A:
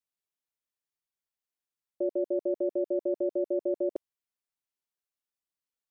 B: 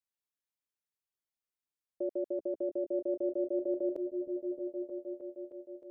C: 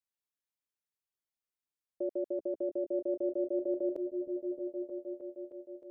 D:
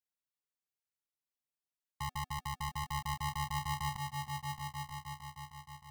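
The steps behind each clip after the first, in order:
repeats that get brighter 0.311 s, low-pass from 200 Hz, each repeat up 1 oct, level -3 dB; gain -5 dB
nothing audible
bell 270 Hz +3.5 dB 0.77 oct; notches 60/120/180/240 Hz; polarity switched at an audio rate 500 Hz; gain -5.5 dB

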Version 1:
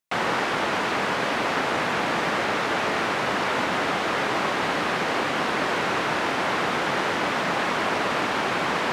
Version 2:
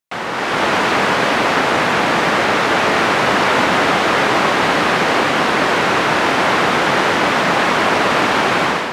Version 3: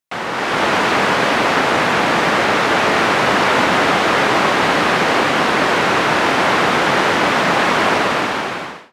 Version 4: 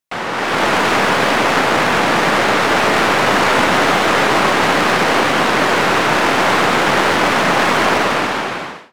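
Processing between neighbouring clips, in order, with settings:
AGC gain up to 11.5 dB
ending faded out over 1.03 s
tracing distortion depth 0.058 ms; gain +1 dB

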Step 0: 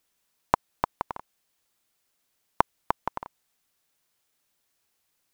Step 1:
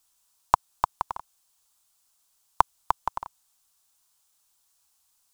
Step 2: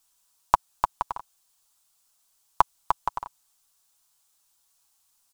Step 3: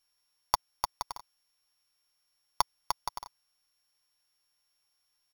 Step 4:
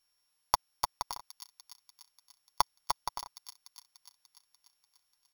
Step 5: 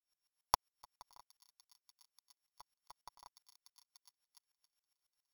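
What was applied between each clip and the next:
graphic EQ 125/250/500/1000/2000/8000 Hz -7/-11/-10/+4/-10/+5 dB; gain +4.5 dB
comb 7.1 ms, depth 40%
sample sorter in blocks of 8 samples; gain -8 dB
thin delay 0.294 s, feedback 63%, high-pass 3300 Hz, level -8 dB
dB-ramp tremolo swelling 7.3 Hz, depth 30 dB; gain -3 dB

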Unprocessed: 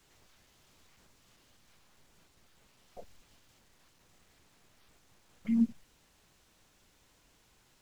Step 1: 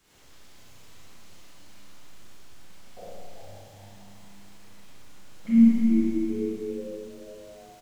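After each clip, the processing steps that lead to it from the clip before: frequency-shifting echo 0.402 s, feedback 42%, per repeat +99 Hz, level -7.5 dB; Schroeder reverb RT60 2.5 s, combs from 31 ms, DRR -9.5 dB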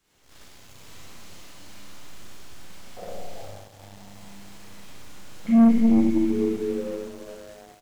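sample leveller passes 2; gain -2 dB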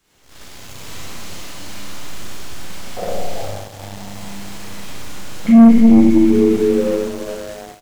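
AGC gain up to 7 dB; in parallel at +3 dB: limiter -14 dBFS, peak gain reduction 10 dB; on the sum: gain -1 dB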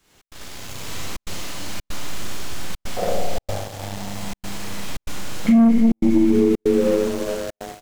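compressor 5:1, threshold -14 dBFS, peak gain reduction 9 dB; step gate "xx.xxxxxxxx.xxx" 142 bpm -60 dB; gain +1.5 dB

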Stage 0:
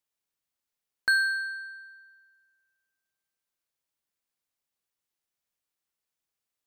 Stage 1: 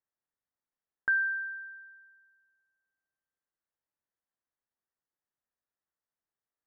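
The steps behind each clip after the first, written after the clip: elliptic low-pass 1900 Hz, stop band 40 dB; gain -2.5 dB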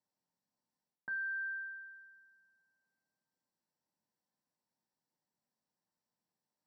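reverse; compressor 10:1, threshold -37 dBFS, peak gain reduction 13.5 dB; reverse; reverb RT60 0.25 s, pre-delay 3 ms, DRR 4.5 dB; gain -4 dB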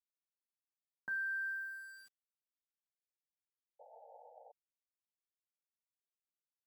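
thin delay 71 ms, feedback 78%, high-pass 1700 Hz, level -23 dB; sample gate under -55.5 dBFS; painted sound noise, 3.79–4.52, 450–910 Hz -58 dBFS

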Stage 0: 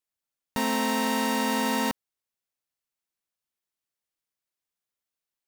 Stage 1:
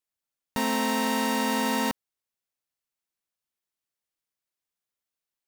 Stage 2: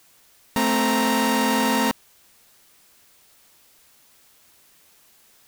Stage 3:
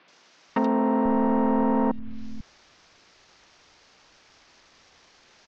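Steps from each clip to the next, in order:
nothing audible
in parallel at +2 dB: limiter -27.5 dBFS, peak gain reduction 11 dB; on the sum: sample leveller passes 1; added noise white -56 dBFS
CVSD 32 kbps; treble ducked by the level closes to 770 Hz, closed at -21 dBFS; three bands offset in time mids, highs, lows 80/490 ms, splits 150/3400 Hz; gain +2 dB

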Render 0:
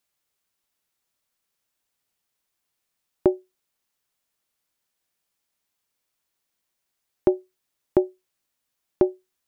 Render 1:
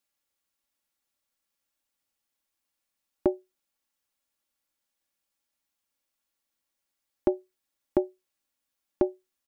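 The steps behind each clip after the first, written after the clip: comb 3.6 ms, depth 47%; gain -5 dB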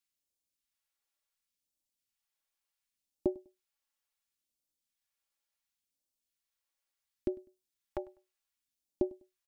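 phaser stages 2, 0.7 Hz, lowest notch 140–1500 Hz; feedback echo 0.1 s, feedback 25%, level -23.5 dB; gain -5 dB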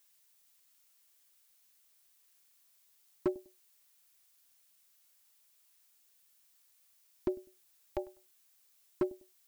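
overloaded stage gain 25.5 dB; added noise blue -70 dBFS; gain +1.5 dB

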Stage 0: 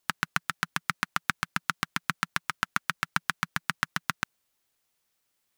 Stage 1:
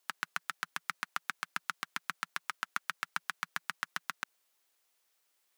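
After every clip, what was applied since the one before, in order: HPF 380 Hz 12 dB/oct; limiter -14.5 dBFS, peak gain reduction 10.5 dB; gain +1 dB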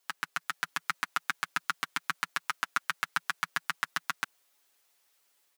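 comb 7.1 ms, depth 72%; AGC gain up to 3.5 dB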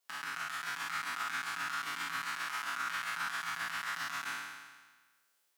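spectral trails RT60 1.41 s; limiter -18 dBFS, peak gain reduction 9.5 dB; gain -7.5 dB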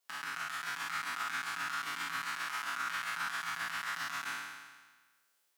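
nothing audible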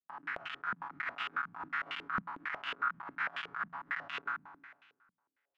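added harmonics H 7 -30 dB, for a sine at -25 dBFS; stepped low-pass 11 Hz 200–2900 Hz; gain -4 dB

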